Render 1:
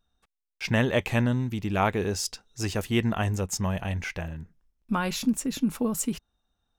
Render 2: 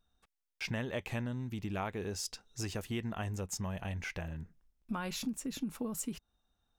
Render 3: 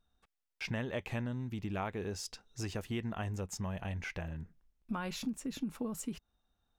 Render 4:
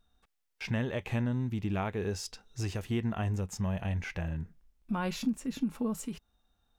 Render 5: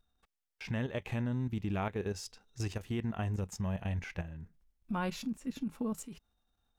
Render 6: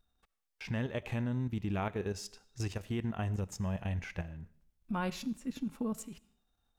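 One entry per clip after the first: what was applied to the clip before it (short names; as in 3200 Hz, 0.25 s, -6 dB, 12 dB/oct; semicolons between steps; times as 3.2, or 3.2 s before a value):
compressor 3:1, threshold -35 dBFS, peak gain reduction 12.5 dB; gain -2 dB
high shelf 5400 Hz -6.5 dB
harmonic-percussive split harmonic +7 dB
level quantiser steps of 11 dB
reverb RT60 0.55 s, pre-delay 35 ms, DRR 19.5 dB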